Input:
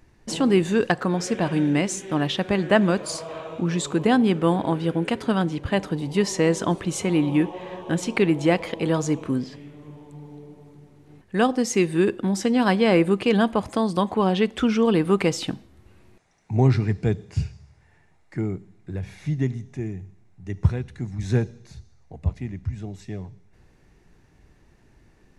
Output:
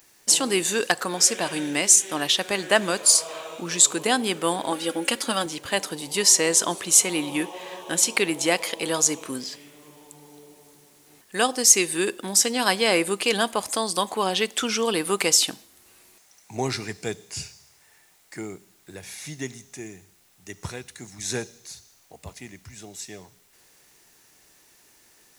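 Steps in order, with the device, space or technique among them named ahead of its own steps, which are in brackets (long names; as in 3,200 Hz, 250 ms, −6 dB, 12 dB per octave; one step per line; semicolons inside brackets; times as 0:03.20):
bass and treble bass −5 dB, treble +6 dB
turntable without a phono preamp (RIAA equalisation recording; white noise bed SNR 36 dB)
0:04.71–0:05.46: comb filter 3.6 ms, depth 65%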